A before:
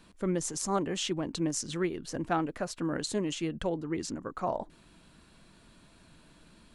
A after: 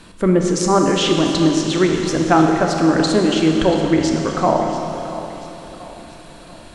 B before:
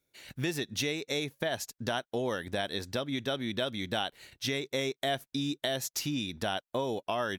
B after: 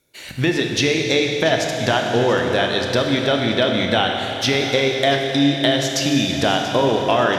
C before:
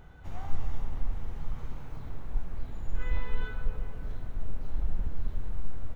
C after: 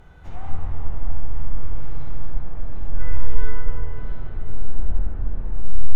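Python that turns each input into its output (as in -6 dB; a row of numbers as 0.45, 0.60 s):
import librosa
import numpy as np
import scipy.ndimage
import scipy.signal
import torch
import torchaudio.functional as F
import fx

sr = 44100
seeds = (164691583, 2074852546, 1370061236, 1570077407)

y = fx.env_lowpass_down(x, sr, base_hz=1900.0, full_db=-24.5)
y = fx.hum_notches(y, sr, base_hz=50, count=5)
y = fx.echo_feedback(y, sr, ms=685, feedback_pct=46, wet_db=-15.5)
y = fx.rev_schroeder(y, sr, rt60_s=3.3, comb_ms=25, drr_db=2.0)
y = y * 10.0 ** (-1.5 / 20.0) / np.max(np.abs(y))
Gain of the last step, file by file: +15.0, +13.5, +4.0 dB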